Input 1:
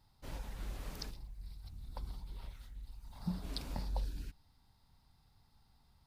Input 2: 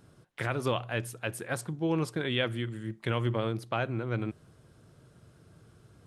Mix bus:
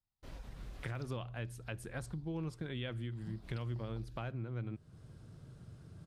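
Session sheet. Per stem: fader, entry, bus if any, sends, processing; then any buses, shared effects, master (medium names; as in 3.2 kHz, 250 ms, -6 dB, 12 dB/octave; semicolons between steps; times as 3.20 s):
-3.5 dB, 0.00 s, no send, band-stop 870 Hz, Q 12
-3.5 dB, 0.45 s, no send, tone controls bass +9 dB, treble +4 dB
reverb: none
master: gate with hold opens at -49 dBFS; treble shelf 10 kHz -11.5 dB; compression 2.5:1, threshold -43 dBFS, peak gain reduction 14.5 dB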